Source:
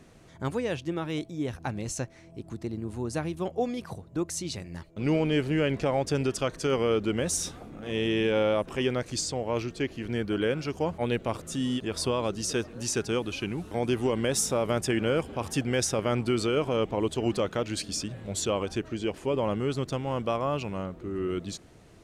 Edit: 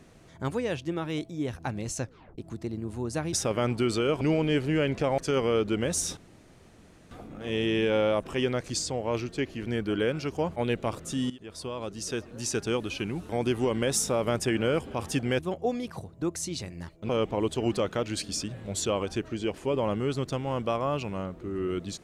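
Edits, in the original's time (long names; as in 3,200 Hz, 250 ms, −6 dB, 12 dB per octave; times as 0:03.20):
0:02.02: tape stop 0.36 s
0:03.33–0:05.03: swap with 0:15.81–0:16.69
0:06.00–0:06.54: remove
0:07.53: splice in room tone 0.94 s
0:11.72–0:13.14: fade in, from −16 dB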